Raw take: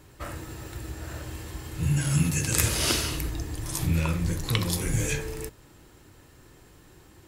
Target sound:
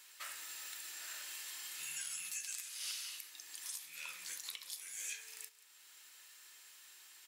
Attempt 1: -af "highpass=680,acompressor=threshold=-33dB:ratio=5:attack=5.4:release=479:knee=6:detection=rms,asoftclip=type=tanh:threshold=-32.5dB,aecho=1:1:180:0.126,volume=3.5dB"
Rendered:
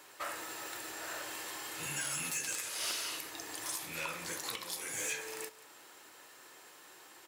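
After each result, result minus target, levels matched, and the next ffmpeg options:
500 Hz band +18.0 dB; downward compressor: peak gain reduction −7 dB
-af "highpass=2400,acompressor=threshold=-33dB:ratio=5:attack=5.4:release=479:knee=6:detection=rms,asoftclip=type=tanh:threshold=-32.5dB,aecho=1:1:180:0.126,volume=3.5dB"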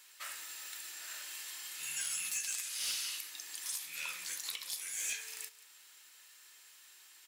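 downward compressor: peak gain reduction −7 dB
-af "highpass=2400,acompressor=threshold=-42dB:ratio=5:attack=5.4:release=479:knee=6:detection=rms,asoftclip=type=tanh:threshold=-32.5dB,aecho=1:1:180:0.126,volume=3.5dB"

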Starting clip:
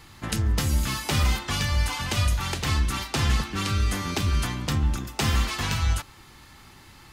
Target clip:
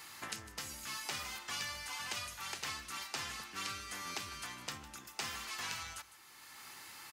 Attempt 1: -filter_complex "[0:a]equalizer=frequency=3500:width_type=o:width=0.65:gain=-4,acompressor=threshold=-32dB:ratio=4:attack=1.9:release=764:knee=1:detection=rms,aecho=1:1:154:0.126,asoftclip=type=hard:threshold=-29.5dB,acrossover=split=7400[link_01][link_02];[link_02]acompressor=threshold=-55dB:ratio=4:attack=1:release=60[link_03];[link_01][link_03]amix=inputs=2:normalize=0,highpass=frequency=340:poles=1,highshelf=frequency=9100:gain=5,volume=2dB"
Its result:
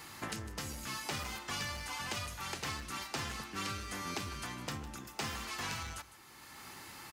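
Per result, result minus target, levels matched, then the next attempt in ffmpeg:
hard clipping: distortion +34 dB; 250 Hz band +8.0 dB
-filter_complex "[0:a]equalizer=frequency=3500:width_type=o:width=0.65:gain=-4,acompressor=threshold=-32dB:ratio=4:attack=1.9:release=764:knee=1:detection=rms,aecho=1:1:154:0.126,asoftclip=type=hard:threshold=-23.5dB,acrossover=split=7400[link_01][link_02];[link_02]acompressor=threshold=-55dB:ratio=4:attack=1:release=60[link_03];[link_01][link_03]amix=inputs=2:normalize=0,highpass=frequency=340:poles=1,highshelf=frequency=9100:gain=5,volume=2dB"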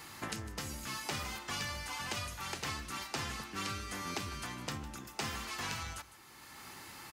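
250 Hz band +8.0 dB
-filter_complex "[0:a]equalizer=frequency=3500:width_type=o:width=0.65:gain=-4,acompressor=threshold=-32dB:ratio=4:attack=1.9:release=764:knee=1:detection=rms,aecho=1:1:154:0.126,asoftclip=type=hard:threshold=-23.5dB,acrossover=split=7400[link_01][link_02];[link_02]acompressor=threshold=-55dB:ratio=4:attack=1:release=60[link_03];[link_01][link_03]amix=inputs=2:normalize=0,highpass=frequency=1300:poles=1,highshelf=frequency=9100:gain=5,volume=2dB"

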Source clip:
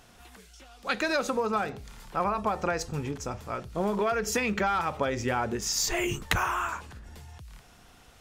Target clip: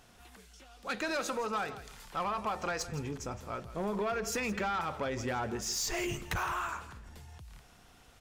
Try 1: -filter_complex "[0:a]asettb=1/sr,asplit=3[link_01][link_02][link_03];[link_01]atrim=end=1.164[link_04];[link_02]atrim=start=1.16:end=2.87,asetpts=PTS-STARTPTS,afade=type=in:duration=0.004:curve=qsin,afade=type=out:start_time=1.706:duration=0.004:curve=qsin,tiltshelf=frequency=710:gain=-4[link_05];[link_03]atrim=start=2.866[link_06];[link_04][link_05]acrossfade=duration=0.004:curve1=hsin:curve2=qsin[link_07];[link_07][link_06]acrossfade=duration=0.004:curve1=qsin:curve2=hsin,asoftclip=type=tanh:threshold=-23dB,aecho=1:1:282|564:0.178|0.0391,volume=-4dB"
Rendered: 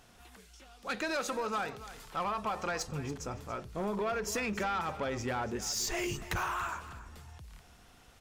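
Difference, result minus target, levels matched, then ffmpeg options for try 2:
echo 117 ms late
-filter_complex "[0:a]asettb=1/sr,asplit=3[link_01][link_02][link_03];[link_01]atrim=end=1.164[link_04];[link_02]atrim=start=1.16:end=2.87,asetpts=PTS-STARTPTS,afade=type=in:duration=0.004:curve=qsin,afade=type=out:start_time=1.706:duration=0.004:curve=qsin,tiltshelf=frequency=710:gain=-4[link_05];[link_03]atrim=start=2.866[link_06];[link_04][link_05]acrossfade=duration=0.004:curve1=hsin:curve2=qsin[link_07];[link_07][link_06]acrossfade=duration=0.004:curve1=qsin:curve2=hsin,asoftclip=type=tanh:threshold=-23dB,aecho=1:1:165|330:0.178|0.0391,volume=-4dB"

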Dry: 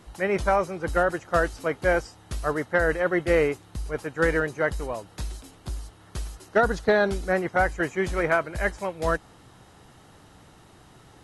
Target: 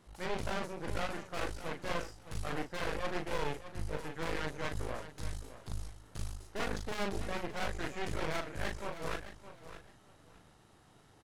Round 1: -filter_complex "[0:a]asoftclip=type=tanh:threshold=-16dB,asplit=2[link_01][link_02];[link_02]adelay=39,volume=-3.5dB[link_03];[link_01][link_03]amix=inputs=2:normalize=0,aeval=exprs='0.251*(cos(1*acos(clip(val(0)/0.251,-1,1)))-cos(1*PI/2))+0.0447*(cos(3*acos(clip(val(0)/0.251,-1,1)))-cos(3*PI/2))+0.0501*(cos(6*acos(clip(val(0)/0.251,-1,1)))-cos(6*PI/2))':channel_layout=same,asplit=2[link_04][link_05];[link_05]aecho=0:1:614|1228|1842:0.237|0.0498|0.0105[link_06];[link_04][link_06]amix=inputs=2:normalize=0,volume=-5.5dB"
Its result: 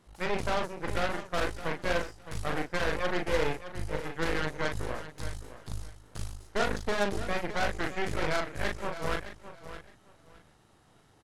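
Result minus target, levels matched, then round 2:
soft clipping: distortion −9 dB
-filter_complex "[0:a]asoftclip=type=tanh:threshold=-26.5dB,asplit=2[link_01][link_02];[link_02]adelay=39,volume=-3.5dB[link_03];[link_01][link_03]amix=inputs=2:normalize=0,aeval=exprs='0.251*(cos(1*acos(clip(val(0)/0.251,-1,1)))-cos(1*PI/2))+0.0447*(cos(3*acos(clip(val(0)/0.251,-1,1)))-cos(3*PI/2))+0.0501*(cos(6*acos(clip(val(0)/0.251,-1,1)))-cos(6*PI/2))':channel_layout=same,asplit=2[link_04][link_05];[link_05]aecho=0:1:614|1228|1842:0.237|0.0498|0.0105[link_06];[link_04][link_06]amix=inputs=2:normalize=0,volume=-5.5dB"

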